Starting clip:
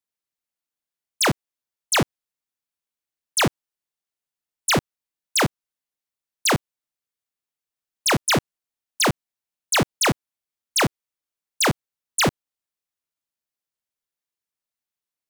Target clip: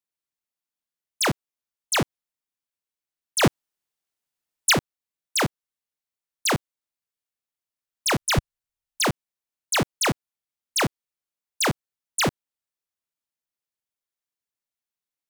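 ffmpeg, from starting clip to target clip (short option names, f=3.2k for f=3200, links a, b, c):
-filter_complex "[0:a]asettb=1/sr,asplit=3[a][b][c];[a]atrim=end=3.434[d];[b]atrim=start=3.43:end=4.73,asetpts=PTS-STARTPTS,afade=t=in:d=0.004:c=qsin,afade=t=out:st=1.296:d=0.004:c=qsin,acontrast=52[e];[c]atrim=start=4.726[f];[d][e]acrossfade=d=0.004:c1=hsin:c2=qsin[g];[g][f]acrossfade=d=0.004:c1=qsin:c2=hsin,asplit=3[h][i][j];[h]afade=t=out:st=8.18:d=0.02[k];[i]asubboost=boost=7.5:cutoff=90,afade=t=in:st=8.18:d=0.02,afade=t=out:st=9.04:d=0.02[l];[j]afade=t=in:st=9.04:d=0.02[m];[k][l][m]amix=inputs=3:normalize=0,volume=-3dB"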